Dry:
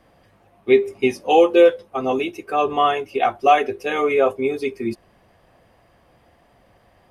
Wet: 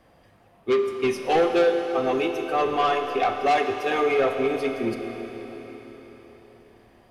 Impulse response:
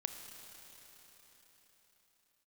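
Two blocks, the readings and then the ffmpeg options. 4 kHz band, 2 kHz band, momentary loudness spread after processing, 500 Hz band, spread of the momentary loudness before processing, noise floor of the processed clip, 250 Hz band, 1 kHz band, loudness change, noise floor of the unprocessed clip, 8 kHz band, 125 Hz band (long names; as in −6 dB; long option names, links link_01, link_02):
−3.0 dB, −2.5 dB, 16 LU, −4.5 dB, 11 LU, −57 dBFS, −4.0 dB, −4.5 dB, −4.5 dB, −58 dBFS, can't be measured, −1.0 dB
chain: -filter_complex "[0:a]asoftclip=type=tanh:threshold=-14.5dB[link_01];[1:a]atrim=start_sample=2205[link_02];[link_01][link_02]afir=irnorm=-1:irlink=0"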